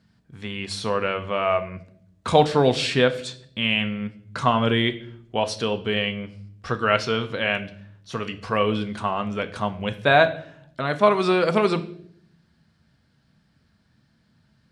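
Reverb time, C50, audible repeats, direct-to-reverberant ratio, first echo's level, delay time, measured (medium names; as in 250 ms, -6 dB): 0.60 s, 15.5 dB, no echo, 8.0 dB, no echo, no echo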